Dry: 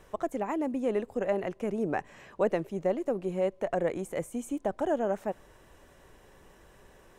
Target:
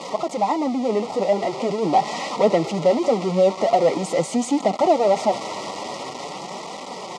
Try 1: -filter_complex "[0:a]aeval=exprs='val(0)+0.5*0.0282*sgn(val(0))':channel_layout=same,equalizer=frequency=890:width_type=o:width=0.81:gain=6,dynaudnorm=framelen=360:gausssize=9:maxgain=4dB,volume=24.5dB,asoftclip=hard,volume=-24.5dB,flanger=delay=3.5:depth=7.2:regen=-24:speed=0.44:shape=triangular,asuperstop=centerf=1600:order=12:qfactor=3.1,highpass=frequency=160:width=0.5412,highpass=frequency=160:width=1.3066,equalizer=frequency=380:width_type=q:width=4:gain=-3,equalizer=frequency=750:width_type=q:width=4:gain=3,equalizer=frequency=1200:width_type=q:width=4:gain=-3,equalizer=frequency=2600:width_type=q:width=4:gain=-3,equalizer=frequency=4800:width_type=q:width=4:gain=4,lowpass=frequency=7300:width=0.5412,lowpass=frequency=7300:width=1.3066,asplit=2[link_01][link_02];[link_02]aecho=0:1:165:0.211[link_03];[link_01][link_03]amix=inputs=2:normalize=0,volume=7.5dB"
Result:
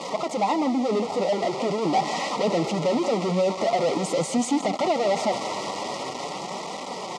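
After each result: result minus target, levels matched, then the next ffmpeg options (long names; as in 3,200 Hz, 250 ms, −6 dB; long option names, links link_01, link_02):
gain into a clipping stage and back: distortion +12 dB; echo-to-direct +10.5 dB
-filter_complex "[0:a]aeval=exprs='val(0)+0.5*0.0282*sgn(val(0))':channel_layout=same,equalizer=frequency=890:width_type=o:width=0.81:gain=6,dynaudnorm=framelen=360:gausssize=9:maxgain=4dB,volume=15.5dB,asoftclip=hard,volume=-15.5dB,flanger=delay=3.5:depth=7.2:regen=-24:speed=0.44:shape=triangular,asuperstop=centerf=1600:order=12:qfactor=3.1,highpass=frequency=160:width=0.5412,highpass=frequency=160:width=1.3066,equalizer=frequency=380:width_type=q:width=4:gain=-3,equalizer=frequency=750:width_type=q:width=4:gain=3,equalizer=frequency=1200:width_type=q:width=4:gain=-3,equalizer=frequency=2600:width_type=q:width=4:gain=-3,equalizer=frequency=4800:width_type=q:width=4:gain=4,lowpass=frequency=7300:width=0.5412,lowpass=frequency=7300:width=1.3066,asplit=2[link_01][link_02];[link_02]aecho=0:1:165:0.211[link_03];[link_01][link_03]amix=inputs=2:normalize=0,volume=7.5dB"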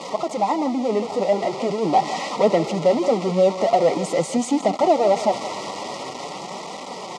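echo-to-direct +10.5 dB
-filter_complex "[0:a]aeval=exprs='val(0)+0.5*0.0282*sgn(val(0))':channel_layout=same,equalizer=frequency=890:width_type=o:width=0.81:gain=6,dynaudnorm=framelen=360:gausssize=9:maxgain=4dB,volume=15.5dB,asoftclip=hard,volume=-15.5dB,flanger=delay=3.5:depth=7.2:regen=-24:speed=0.44:shape=triangular,asuperstop=centerf=1600:order=12:qfactor=3.1,highpass=frequency=160:width=0.5412,highpass=frequency=160:width=1.3066,equalizer=frequency=380:width_type=q:width=4:gain=-3,equalizer=frequency=750:width_type=q:width=4:gain=3,equalizer=frequency=1200:width_type=q:width=4:gain=-3,equalizer=frequency=2600:width_type=q:width=4:gain=-3,equalizer=frequency=4800:width_type=q:width=4:gain=4,lowpass=frequency=7300:width=0.5412,lowpass=frequency=7300:width=1.3066,asplit=2[link_01][link_02];[link_02]aecho=0:1:165:0.0631[link_03];[link_01][link_03]amix=inputs=2:normalize=0,volume=7.5dB"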